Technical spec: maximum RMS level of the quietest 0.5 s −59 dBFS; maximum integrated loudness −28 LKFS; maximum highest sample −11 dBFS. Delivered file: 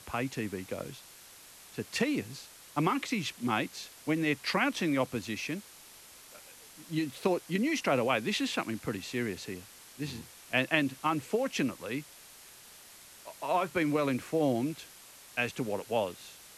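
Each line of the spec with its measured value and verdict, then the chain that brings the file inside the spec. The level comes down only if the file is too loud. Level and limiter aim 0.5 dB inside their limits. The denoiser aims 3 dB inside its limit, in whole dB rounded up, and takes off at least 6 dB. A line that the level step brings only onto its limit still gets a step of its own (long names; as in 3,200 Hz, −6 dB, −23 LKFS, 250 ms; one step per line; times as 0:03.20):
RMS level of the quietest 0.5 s −53 dBFS: out of spec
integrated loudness −32.0 LKFS: in spec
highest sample −10.5 dBFS: out of spec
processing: broadband denoise 9 dB, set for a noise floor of −53 dBFS
brickwall limiter −11.5 dBFS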